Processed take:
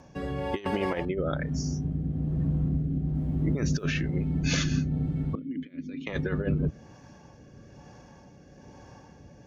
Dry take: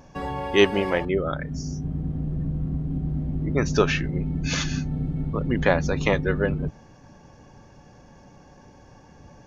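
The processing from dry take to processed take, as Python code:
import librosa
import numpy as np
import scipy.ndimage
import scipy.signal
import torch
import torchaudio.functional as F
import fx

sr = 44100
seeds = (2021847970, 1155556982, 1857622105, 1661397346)

y = scipy.signal.sosfilt(scipy.signal.butter(2, 52.0, 'highpass', fs=sr, output='sos'), x)
y = fx.over_compress(y, sr, threshold_db=-24.0, ratio=-0.5)
y = fx.rotary(y, sr, hz=1.1)
y = fx.quant_dither(y, sr, seeds[0], bits=12, dither='none', at=(3.15, 4.01))
y = fx.vowel_filter(y, sr, vowel='i', at=(5.35, 6.07))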